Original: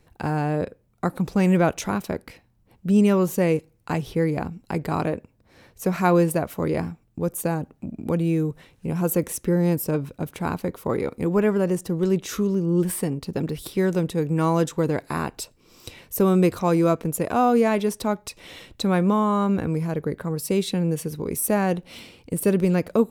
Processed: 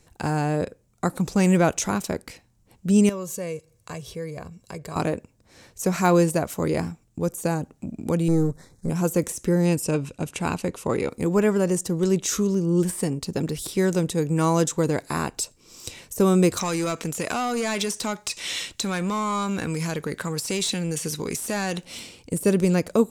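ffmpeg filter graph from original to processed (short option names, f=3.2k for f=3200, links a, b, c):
-filter_complex "[0:a]asettb=1/sr,asplit=3[a][b][c];[a]atrim=end=3.094[d];[b]atrim=start=3.09:end=4.96,asetpts=PTS-STARTPTS,afade=t=in:d=0.004:c=qsin,afade=t=out:st=1.866:d=0.004:c=qsin,highpass=45,aecho=1:1:1.8:0.56,atrim=end_sample=82467,acompressor=threshold=-50dB:ratio=1.5:attack=3.2:release=140:knee=1:detection=peak[e];[c]atrim=start=4.956[f];[d][e]acrossfade=d=0.004:c1=hsin:c2=qsin[g];[g][f]acrossfade=d=0.004:c1=qsin:c2=hsin,asettb=1/sr,asplit=3[h][i][j];[h]atrim=end=8.284[k];[i]atrim=start=8.28:end=8.9,asetpts=PTS-STARTPTS,afade=t=in:d=0.004:c=qsin,afade=t=out:st=0.616:d=0.004:c=qsin,aeval=exprs='if(lt(val(0),0),0.447*val(0),val(0))':c=same,asuperstop=centerf=2800:order=4:qfactor=1.4,lowshelf=f=470:g=6[l];[j]atrim=start=8.896[m];[k][l]acrossfade=d=0.004:c1=hsin:c2=qsin[n];[n][m]acrossfade=d=0.004:c1=qsin:c2=hsin,asettb=1/sr,asplit=3[o][p][q];[o]atrim=end=9.654[r];[p]atrim=start=9.65:end=11.09,asetpts=PTS-STARTPTS,afade=t=in:d=0.004:c=qsin,afade=t=out:st=1.436:d=0.004:c=qsin,lowpass=f=11k:w=0.5412,lowpass=f=11k:w=1.3066,equalizer=f=2.7k:t=o:w=0.27:g=10[s];[q]atrim=start=11.086[t];[r][s]acrossfade=d=0.004:c1=hsin:c2=qsin[u];[u][t]acrossfade=d=0.004:c1=qsin:c2=hsin,asettb=1/sr,asplit=3[v][w][x];[v]atrim=end=16.574[y];[w]atrim=start=16.57:end=21.85,asetpts=PTS-STARTPTS,afade=t=in:d=0.004:c=qsin,afade=t=out:st=5.276:d=0.004:c=qsin,equalizer=f=610:w=0.46:g=-9,asplit=2[z][aa];[aa]highpass=f=720:p=1,volume=19dB,asoftclip=type=tanh:threshold=-11dB[ab];[z][ab]amix=inputs=2:normalize=0,lowpass=f=5.1k:p=1,volume=-6dB,acompressor=threshold=-23dB:ratio=4:attack=3.2:release=140:knee=1:detection=peak[ac];[x]atrim=start=21.846[ad];[y][ac]acrossfade=d=0.004:c1=hsin:c2=qsin[ae];[ae][ad]acrossfade=d=0.004:c1=qsin:c2=hsin,deesser=0.6,equalizer=f=7.2k:w=0.99:g=13"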